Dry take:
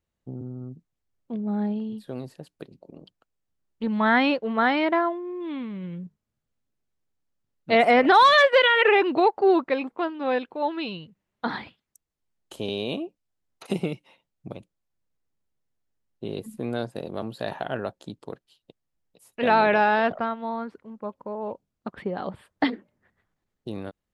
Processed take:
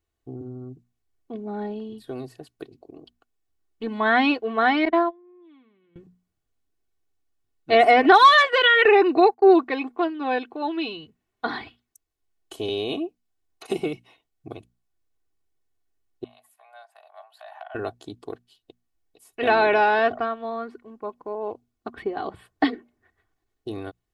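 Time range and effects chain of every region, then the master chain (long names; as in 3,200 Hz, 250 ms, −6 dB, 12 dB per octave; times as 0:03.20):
0:04.85–0:05.96: high-pass filter 130 Hz + noise gate −24 dBFS, range −23 dB
0:08.85–0:09.56: noise gate −33 dBFS, range −25 dB + Butterworth band-reject 3,200 Hz, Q 4.8
0:16.24–0:17.75: parametric band 5,900 Hz −11 dB 2.5 octaves + downward compressor 3 to 1, threshold −36 dBFS + Chebyshev high-pass with heavy ripple 600 Hz, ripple 3 dB
whole clip: mains-hum notches 60/120/180/240 Hz; comb filter 2.7 ms, depth 73%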